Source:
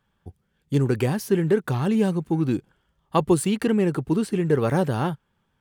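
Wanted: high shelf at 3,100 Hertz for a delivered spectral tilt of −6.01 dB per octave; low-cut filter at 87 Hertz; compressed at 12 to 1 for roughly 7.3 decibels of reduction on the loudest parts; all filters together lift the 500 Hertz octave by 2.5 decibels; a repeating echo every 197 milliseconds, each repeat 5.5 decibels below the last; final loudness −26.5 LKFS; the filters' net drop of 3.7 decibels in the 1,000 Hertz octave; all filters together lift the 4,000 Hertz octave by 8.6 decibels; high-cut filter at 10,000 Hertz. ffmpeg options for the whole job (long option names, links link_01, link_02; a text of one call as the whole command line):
ffmpeg -i in.wav -af "highpass=87,lowpass=10000,equalizer=frequency=500:width_type=o:gain=4.5,equalizer=frequency=1000:width_type=o:gain=-7.5,highshelf=frequency=3100:gain=5.5,equalizer=frequency=4000:width_type=o:gain=8,acompressor=threshold=-20dB:ratio=12,aecho=1:1:197|394|591|788|985|1182|1379:0.531|0.281|0.149|0.079|0.0419|0.0222|0.0118,volume=-1dB" out.wav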